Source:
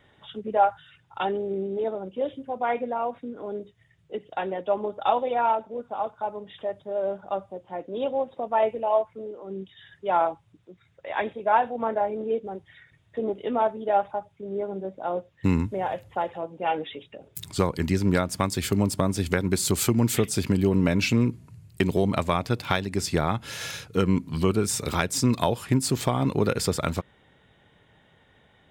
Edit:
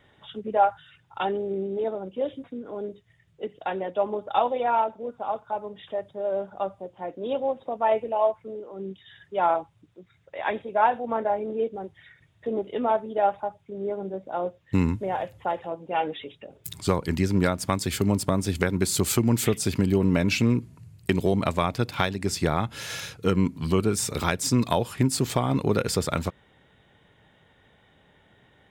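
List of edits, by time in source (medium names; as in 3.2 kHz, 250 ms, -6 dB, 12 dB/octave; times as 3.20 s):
2.44–3.15 s: delete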